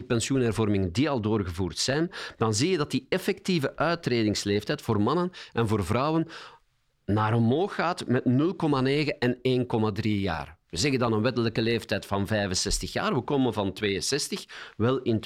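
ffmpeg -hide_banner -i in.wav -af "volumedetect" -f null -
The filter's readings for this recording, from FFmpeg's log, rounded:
mean_volume: -26.5 dB
max_volume: -11.8 dB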